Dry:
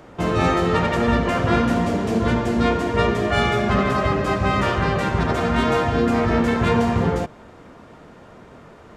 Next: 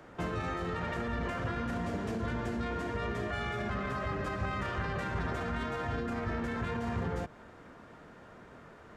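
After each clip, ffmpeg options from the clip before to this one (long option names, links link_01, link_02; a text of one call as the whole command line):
ffmpeg -i in.wav -filter_complex "[0:a]equalizer=frequency=1600:width=2:gain=5.5,alimiter=limit=-13.5dB:level=0:latency=1:release=15,acrossover=split=120[link_01][link_02];[link_02]acompressor=threshold=-24dB:ratio=6[link_03];[link_01][link_03]amix=inputs=2:normalize=0,volume=-9dB" out.wav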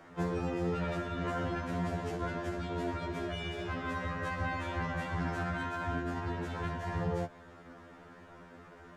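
ffmpeg -i in.wav -af "afftfilt=real='re*2*eq(mod(b,4),0)':imag='im*2*eq(mod(b,4),0)':win_size=2048:overlap=0.75,volume=2dB" out.wav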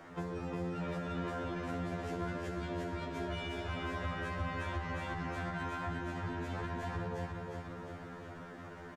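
ffmpeg -i in.wav -af "acompressor=threshold=-39dB:ratio=6,aecho=1:1:356|712|1068|1424|1780|2136|2492|2848:0.596|0.351|0.207|0.122|0.0722|0.0426|0.0251|0.0148,volume=2dB" out.wav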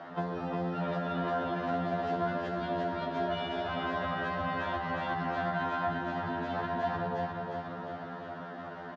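ffmpeg -i in.wav -af "highpass=180,equalizer=frequency=210:width_type=q:width=4:gain=3,equalizer=frequency=320:width_type=q:width=4:gain=-6,equalizer=frequency=470:width_type=q:width=4:gain=-5,equalizer=frequency=690:width_type=q:width=4:gain=7,equalizer=frequency=2300:width_type=q:width=4:gain=-9,lowpass=frequency=4300:width=0.5412,lowpass=frequency=4300:width=1.3066,volume=7dB" out.wav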